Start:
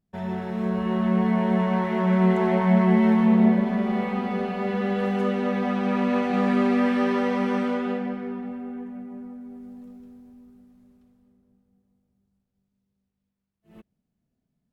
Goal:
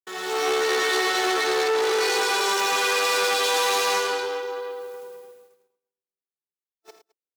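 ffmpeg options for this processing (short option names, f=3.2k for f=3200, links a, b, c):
-filter_complex "[0:a]alimiter=limit=-20dB:level=0:latency=1:release=12,asplit=2[a][b];[b]aecho=0:1:105|165|218|422:0.316|0.531|0.473|0.316[c];[a][c]amix=inputs=2:normalize=0,agate=range=-33dB:threshold=-46dB:ratio=3:detection=peak,crystalizer=i=8:c=0,aeval=exprs='(tanh(20*val(0)+0.75)-tanh(0.75))/20':c=same,dynaudnorm=f=240:g=5:m=8dB,asetrate=88200,aresample=44100,highpass=380"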